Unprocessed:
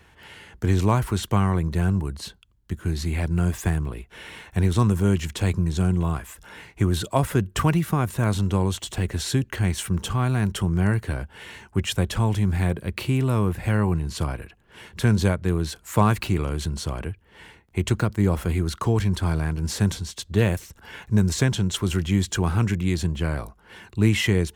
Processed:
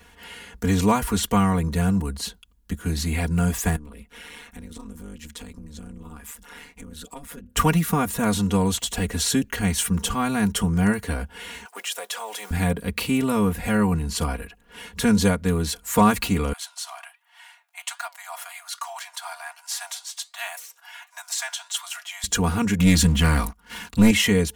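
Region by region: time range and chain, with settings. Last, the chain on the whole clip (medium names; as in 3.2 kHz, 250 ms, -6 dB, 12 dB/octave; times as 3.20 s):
3.76–7.57 s: band-stop 660 Hz, Q 7.5 + compression 4:1, threshold -37 dBFS + AM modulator 150 Hz, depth 90%
11.65–12.51 s: companding laws mixed up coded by mu + high-pass 510 Hz 24 dB/octave + compression 2.5:1, threshold -34 dBFS
16.53–22.24 s: steep high-pass 660 Hz 96 dB/octave + flange 1.3 Hz, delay 6.5 ms, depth 5.4 ms, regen +84%
22.79–24.11 s: high-order bell 500 Hz -8.5 dB 1.2 oct + waveshaping leveller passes 2
whole clip: treble shelf 6 kHz +7.5 dB; comb 4.2 ms, depth 97%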